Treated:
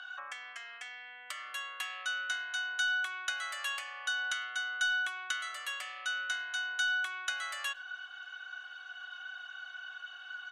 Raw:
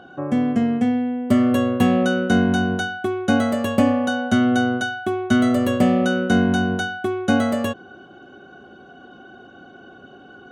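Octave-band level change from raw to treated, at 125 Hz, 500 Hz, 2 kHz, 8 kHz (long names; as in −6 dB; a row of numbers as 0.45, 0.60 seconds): below −40 dB, −37.5 dB, −5.0 dB, −5.0 dB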